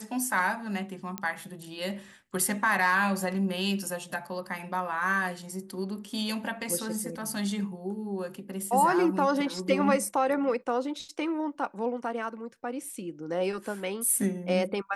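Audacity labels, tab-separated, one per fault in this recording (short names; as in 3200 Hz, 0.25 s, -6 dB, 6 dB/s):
1.180000	1.180000	pop -15 dBFS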